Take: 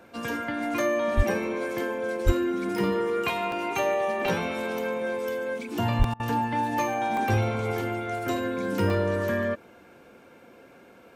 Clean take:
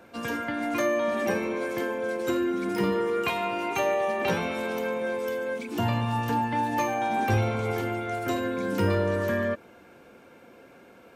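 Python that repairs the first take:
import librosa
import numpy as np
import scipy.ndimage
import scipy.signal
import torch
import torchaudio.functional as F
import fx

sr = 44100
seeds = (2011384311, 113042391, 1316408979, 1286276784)

y = fx.fix_deplosive(x, sr, at_s=(1.16, 2.25, 5.98))
y = fx.fix_interpolate(y, sr, at_s=(3.52, 4.26, 6.04, 7.17, 8.9), length_ms=1.9)
y = fx.fix_interpolate(y, sr, at_s=(6.14,), length_ms=57.0)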